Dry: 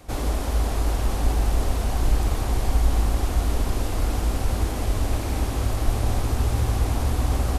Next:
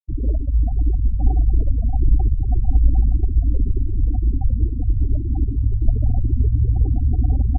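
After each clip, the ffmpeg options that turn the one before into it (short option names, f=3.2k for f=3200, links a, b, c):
-af "afftfilt=real='re*gte(hypot(re,im),0.158)':imag='im*gte(hypot(re,im),0.158)':win_size=1024:overlap=0.75,volume=5.5dB"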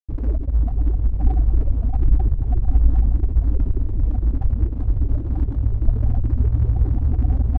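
-af "aeval=exprs='sgn(val(0))*max(abs(val(0))-0.0211,0)':c=same"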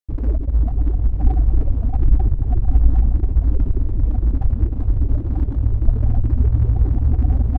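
-af "aecho=1:1:308:0.158,volume=2dB"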